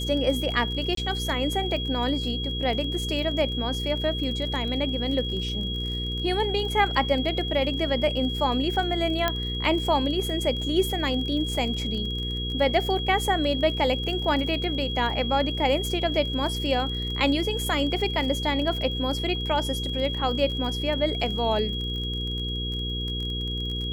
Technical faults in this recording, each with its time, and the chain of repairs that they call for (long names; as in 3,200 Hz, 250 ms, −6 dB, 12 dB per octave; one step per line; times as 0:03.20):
surface crackle 27 per second −32 dBFS
mains hum 60 Hz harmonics 8 −31 dBFS
whistle 3,300 Hz −31 dBFS
0:00.95–0:00.97: drop-out 23 ms
0:09.28: click −9 dBFS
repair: click removal
hum removal 60 Hz, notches 8
notch filter 3,300 Hz, Q 30
repair the gap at 0:00.95, 23 ms